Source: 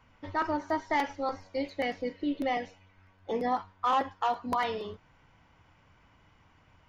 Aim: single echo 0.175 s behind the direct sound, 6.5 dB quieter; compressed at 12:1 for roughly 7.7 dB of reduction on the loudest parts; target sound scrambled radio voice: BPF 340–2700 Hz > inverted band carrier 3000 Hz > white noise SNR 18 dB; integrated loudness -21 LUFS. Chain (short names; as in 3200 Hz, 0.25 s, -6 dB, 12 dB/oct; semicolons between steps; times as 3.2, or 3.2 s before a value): compressor 12:1, threshold -31 dBFS; BPF 340–2700 Hz; echo 0.175 s -6.5 dB; inverted band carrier 3000 Hz; white noise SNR 18 dB; gain +14 dB